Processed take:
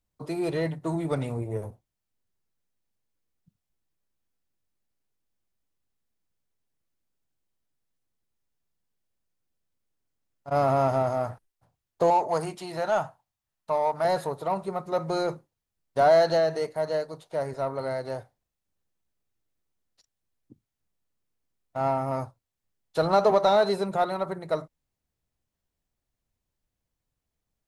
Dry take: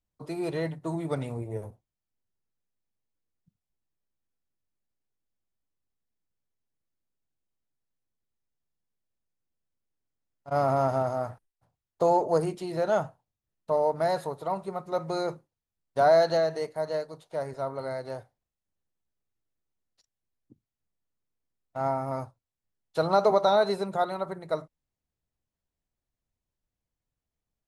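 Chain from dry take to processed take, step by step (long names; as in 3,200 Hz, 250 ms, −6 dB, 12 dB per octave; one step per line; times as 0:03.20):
0:12.10–0:14.05: low shelf with overshoot 610 Hz −6.5 dB, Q 1.5
in parallel at −5 dB: soft clipping −28.5 dBFS, distortion −6 dB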